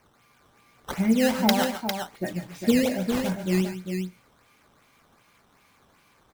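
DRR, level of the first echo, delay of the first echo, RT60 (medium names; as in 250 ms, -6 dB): no reverb, -11.0 dB, 144 ms, no reverb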